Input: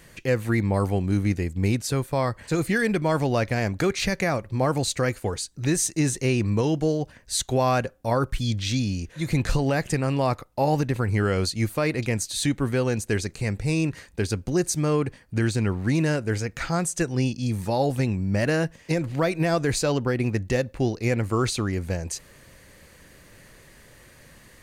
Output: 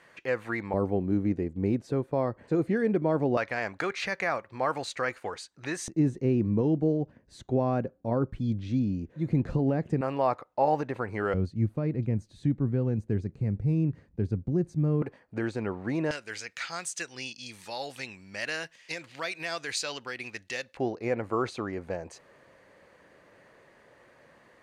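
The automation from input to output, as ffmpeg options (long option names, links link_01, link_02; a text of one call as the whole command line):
ffmpeg -i in.wav -af "asetnsamples=nb_out_samples=441:pad=0,asendcmd='0.74 bandpass f 360;3.37 bandpass f 1300;5.88 bandpass f 250;10.01 bandpass f 800;11.34 bandpass f 150;15.02 bandpass f 680;16.11 bandpass f 3300;20.77 bandpass f 730',bandpass=frequency=1100:width_type=q:width=0.85:csg=0" out.wav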